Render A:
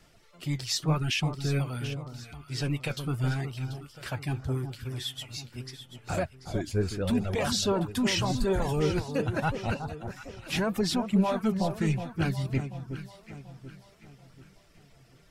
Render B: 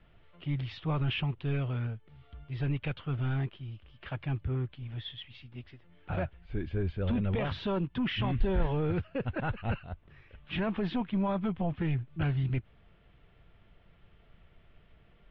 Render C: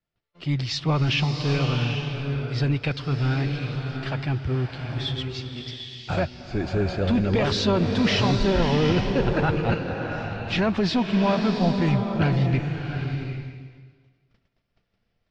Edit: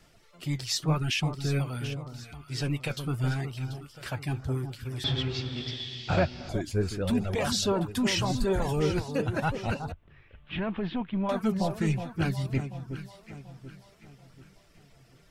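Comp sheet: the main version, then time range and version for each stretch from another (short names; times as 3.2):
A
5.04–6.49 from C
9.92–11.29 from B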